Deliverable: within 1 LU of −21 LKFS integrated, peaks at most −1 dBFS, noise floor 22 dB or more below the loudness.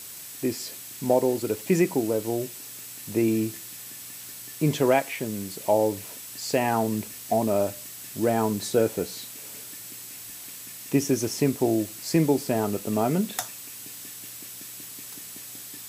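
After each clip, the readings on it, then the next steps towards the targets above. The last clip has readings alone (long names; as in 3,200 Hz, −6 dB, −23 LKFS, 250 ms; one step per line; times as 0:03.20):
interfering tone 7,800 Hz; level of the tone −49 dBFS; background noise floor −41 dBFS; target noise floor −49 dBFS; integrated loudness −27.0 LKFS; sample peak −9.5 dBFS; target loudness −21.0 LKFS
→ notch filter 7,800 Hz, Q 30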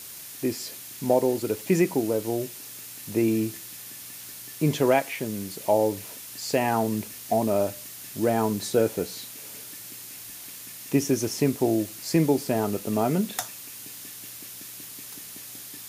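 interfering tone none found; background noise floor −42 dBFS; target noise floor −48 dBFS
→ noise reduction from a noise print 6 dB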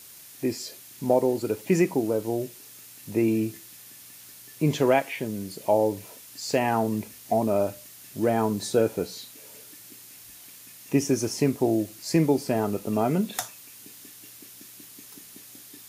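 background noise floor −47 dBFS; target noise floor −48 dBFS
→ noise reduction from a noise print 6 dB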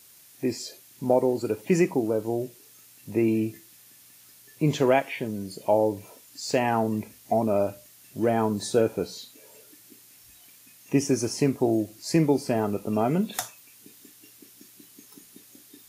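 background noise floor −53 dBFS; integrated loudness −26.0 LKFS; sample peak −10.0 dBFS; target loudness −21.0 LKFS
→ level +5 dB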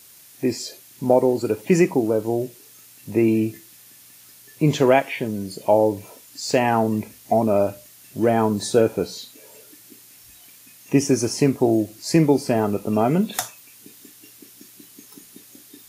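integrated loudness −21.0 LKFS; sample peak −5.0 dBFS; background noise floor −48 dBFS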